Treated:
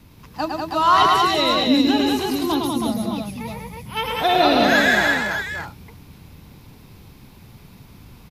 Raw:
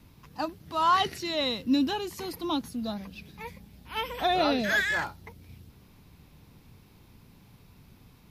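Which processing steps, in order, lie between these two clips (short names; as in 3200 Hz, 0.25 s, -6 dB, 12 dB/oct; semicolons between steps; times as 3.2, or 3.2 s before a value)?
2.49–3.97 thirty-one-band EQ 125 Hz +11 dB, 1600 Hz -9 dB, 2500 Hz -4 dB, 4000 Hz -5 dB, 10000 Hz +8 dB; on a send: tapped delay 0.108/0.194/0.322/0.612 s -3.5/-3.5/-4/-8 dB; on the sum: gain +6.5 dB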